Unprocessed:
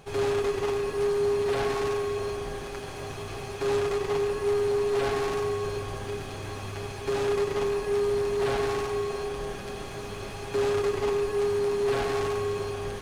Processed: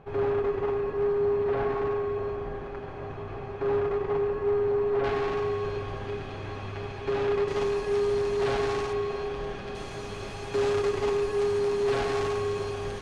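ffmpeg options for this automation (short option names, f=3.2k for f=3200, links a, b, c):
-af "asetnsamples=n=441:p=0,asendcmd='5.04 lowpass f 3200;7.48 lowpass f 6700;8.93 lowpass f 3900;9.75 lowpass f 7900',lowpass=1.6k"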